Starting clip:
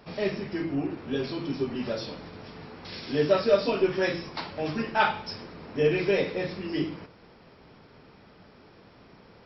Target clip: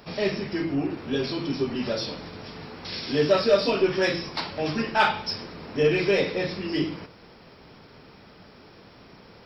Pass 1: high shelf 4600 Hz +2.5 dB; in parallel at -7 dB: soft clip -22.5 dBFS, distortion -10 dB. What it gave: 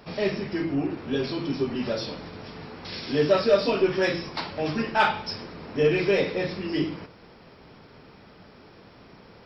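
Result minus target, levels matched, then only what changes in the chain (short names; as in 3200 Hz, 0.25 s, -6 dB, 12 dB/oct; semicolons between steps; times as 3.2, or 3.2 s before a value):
8000 Hz band -3.5 dB
change: high shelf 4600 Hz +9 dB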